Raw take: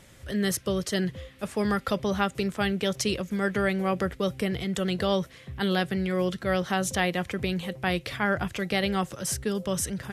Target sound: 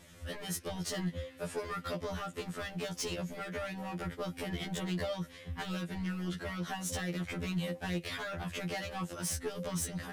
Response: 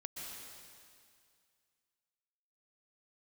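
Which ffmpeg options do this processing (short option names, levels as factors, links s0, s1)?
-af "acompressor=threshold=0.0447:ratio=6,asoftclip=type=hard:threshold=0.0376,afftfilt=real='re*2*eq(mod(b,4),0)':imag='im*2*eq(mod(b,4),0)':win_size=2048:overlap=0.75"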